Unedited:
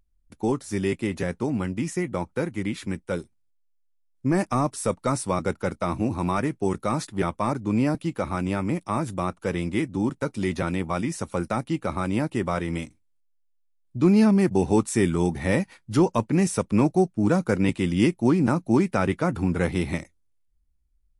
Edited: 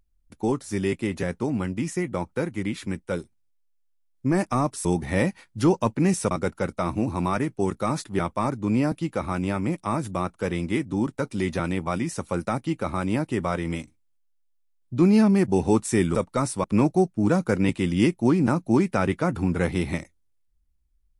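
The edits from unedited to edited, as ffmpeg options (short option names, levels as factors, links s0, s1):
-filter_complex "[0:a]asplit=5[s0][s1][s2][s3][s4];[s0]atrim=end=4.852[s5];[s1]atrim=start=15.178:end=16.642[s6];[s2]atrim=start=5.338:end=15.182[s7];[s3]atrim=start=4.848:end=5.342[s8];[s4]atrim=start=16.638[s9];[s5][s6]acrossfade=d=0.004:c1=hsin:c2=hsin[s10];[s10][s7]acrossfade=d=0.004:c1=hsin:c2=hsin[s11];[s11][s8]acrossfade=d=0.004:c1=hsin:c2=hsin[s12];[s12][s9]acrossfade=d=0.004:c1=hsin:c2=hsin"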